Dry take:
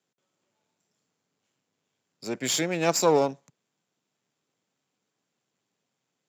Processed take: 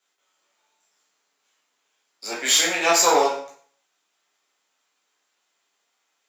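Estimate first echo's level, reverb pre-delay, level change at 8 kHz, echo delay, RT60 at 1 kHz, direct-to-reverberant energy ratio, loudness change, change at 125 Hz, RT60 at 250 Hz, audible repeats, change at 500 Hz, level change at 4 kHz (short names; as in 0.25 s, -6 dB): none, 5 ms, +9.5 dB, none, 0.50 s, -5.0 dB, +6.5 dB, -15.0 dB, 0.55 s, none, +1.5 dB, +10.5 dB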